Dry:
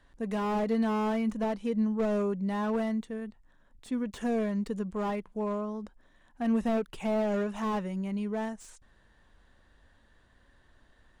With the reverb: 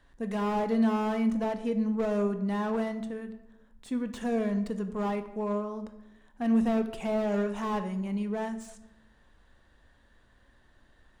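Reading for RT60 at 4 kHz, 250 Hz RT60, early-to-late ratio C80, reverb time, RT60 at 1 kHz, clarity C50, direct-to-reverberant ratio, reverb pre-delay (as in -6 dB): 0.55 s, 1.1 s, 14.0 dB, 0.95 s, 0.85 s, 11.5 dB, 9.0 dB, 18 ms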